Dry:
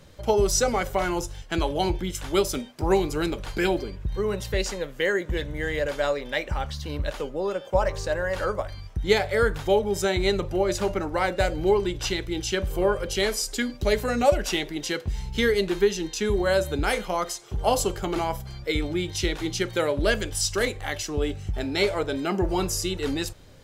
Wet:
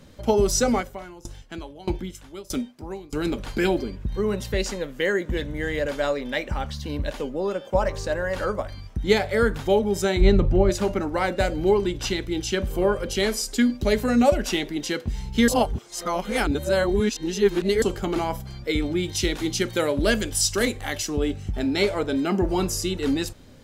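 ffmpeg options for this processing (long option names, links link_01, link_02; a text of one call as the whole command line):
ffmpeg -i in.wav -filter_complex "[0:a]asplit=3[link_01][link_02][link_03];[link_01]afade=type=out:start_time=0.8:duration=0.02[link_04];[link_02]aeval=exprs='val(0)*pow(10,-22*if(lt(mod(1.6*n/s,1),2*abs(1.6)/1000),1-mod(1.6*n/s,1)/(2*abs(1.6)/1000),(mod(1.6*n/s,1)-2*abs(1.6)/1000)/(1-2*abs(1.6)/1000))/20)':channel_layout=same,afade=type=in:start_time=0.8:duration=0.02,afade=type=out:start_time=3.24:duration=0.02[link_05];[link_03]afade=type=in:start_time=3.24:duration=0.02[link_06];[link_04][link_05][link_06]amix=inputs=3:normalize=0,asettb=1/sr,asplit=3[link_07][link_08][link_09];[link_07]atrim=end=6.794[link_10];[link_08]atrim=start=6.79:end=7.33,asetpts=PTS-STARTPTS,afade=type=in:duration=0.004:curve=qsin,afade=type=out:start_time=0.536:duration=0.004:curve=qsin,bandreject=frequency=1300:width=7.1[link_11];[link_09]atrim=start=7.326[link_12];[link_10][link_11]acrossfade=duration=0.004:curve1=hsin:curve2=qsin[link_13];[link_13][link_12]acrossfade=duration=0.004:curve1=qsin:curve2=hsin,asplit=3[link_14][link_15][link_16];[link_14]afade=type=out:start_time=10.2:duration=0.02[link_17];[link_15]aemphasis=mode=reproduction:type=bsi,afade=type=in:start_time=10.2:duration=0.02,afade=type=out:start_time=10.69:duration=0.02[link_18];[link_16]afade=type=in:start_time=10.69:duration=0.02[link_19];[link_17][link_18][link_19]amix=inputs=3:normalize=0,asettb=1/sr,asplit=3[link_20][link_21][link_22];[link_20]atrim=end=19.034[link_23];[link_21]atrim=start=19.03:end=21.17,asetpts=PTS-STARTPTS,afade=type=in:duration=0.004:curve=qsin,afade=type=out:start_time=2.136:duration=0.004:curve=qsin,highshelf=frequency=4900:gain=6[link_24];[link_22]atrim=start=21.166[link_25];[link_23][link_24]acrossfade=duration=0.004:curve1=hsin:curve2=qsin[link_26];[link_26][link_25]acrossfade=duration=0.004:curve1=qsin:curve2=hsin,asplit=3[link_27][link_28][link_29];[link_27]atrim=end=15.482[link_30];[link_28]atrim=start=15.478:end=17.822,asetpts=PTS-STARTPTS,areverse[link_31];[link_29]atrim=start=17.818[link_32];[link_30][link_31]acrossfade=duration=0.004:curve1=hsin:curve2=hsin[link_33];[link_33][link_32]acrossfade=duration=0.004:curve1=hsin:curve2=hsin,equalizer=frequency=240:width_type=o:width=0.59:gain=9.5" out.wav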